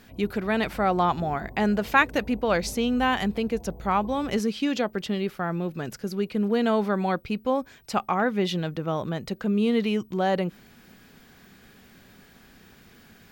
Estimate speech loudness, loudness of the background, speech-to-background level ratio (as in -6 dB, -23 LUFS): -26.0 LUFS, -44.5 LUFS, 18.5 dB